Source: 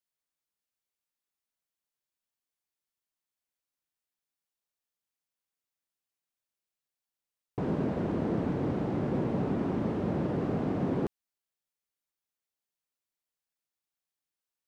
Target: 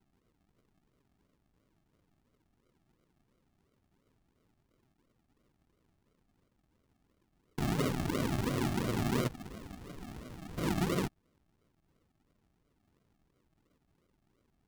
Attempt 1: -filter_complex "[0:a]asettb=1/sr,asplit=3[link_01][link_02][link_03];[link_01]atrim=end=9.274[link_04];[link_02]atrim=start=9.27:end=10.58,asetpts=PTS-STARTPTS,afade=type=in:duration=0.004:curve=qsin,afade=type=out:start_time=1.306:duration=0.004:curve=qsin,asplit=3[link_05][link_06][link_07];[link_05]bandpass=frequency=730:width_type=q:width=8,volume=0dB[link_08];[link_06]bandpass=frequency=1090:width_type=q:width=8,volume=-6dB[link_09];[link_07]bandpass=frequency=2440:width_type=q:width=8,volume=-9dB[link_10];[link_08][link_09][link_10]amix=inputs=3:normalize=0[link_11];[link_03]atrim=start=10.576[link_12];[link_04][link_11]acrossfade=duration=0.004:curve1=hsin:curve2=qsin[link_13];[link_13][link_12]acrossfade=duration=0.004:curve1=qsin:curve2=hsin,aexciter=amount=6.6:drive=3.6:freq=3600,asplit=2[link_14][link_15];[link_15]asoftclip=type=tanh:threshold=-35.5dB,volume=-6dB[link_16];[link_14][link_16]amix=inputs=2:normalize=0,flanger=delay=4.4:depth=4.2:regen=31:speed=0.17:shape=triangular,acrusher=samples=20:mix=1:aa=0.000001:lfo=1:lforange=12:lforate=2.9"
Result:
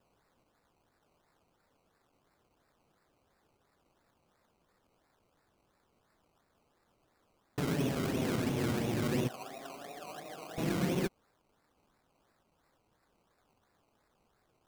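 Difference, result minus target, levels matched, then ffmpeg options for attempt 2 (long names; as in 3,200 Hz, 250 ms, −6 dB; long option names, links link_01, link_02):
sample-and-hold swept by an LFO: distortion −15 dB
-filter_complex "[0:a]asettb=1/sr,asplit=3[link_01][link_02][link_03];[link_01]atrim=end=9.274[link_04];[link_02]atrim=start=9.27:end=10.58,asetpts=PTS-STARTPTS,afade=type=in:duration=0.004:curve=qsin,afade=type=out:start_time=1.306:duration=0.004:curve=qsin,asplit=3[link_05][link_06][link_07];[link_05]bandpass=frequency=730:width_type=q:width=8,volume=0dB[link_08];[link_06]bandpass=frequency=1090:width_type=q:width=8,volume=-6dB[link_09];[link_07]bandpass=frequency=2440:width_type=q:width=8,volume=-9dB[link_10];[link_08][link_09][link_10]amix=inputs=3:normalize=0[link_11];[link_03]atrim=start=10.576[link_12];[link_04][link_11]acrossfade=duration=0.004:curve1=hsin:curve2=qsin[link_13];[link_13][link_12]acrossfade=duration=0.004:curve1=qsin:curve2=hsin,aexciter=amount=6.6:drive=3.6:freq=3600,asplit=2[link_14][link_15];[link_15]asoftclip=type=tanh:threshold=-35.5dB,volume=-6dB[link_16];[link_14][link_16]amix=inputs=2:normalize=0,flanger=delay=4.4:depth=4.2:regen=31:speed=0.17:shape=triangular,acrusher=samples=71:mix=1:aa=0.000001:lfo=1:lforange=42.6:lforate=2.9"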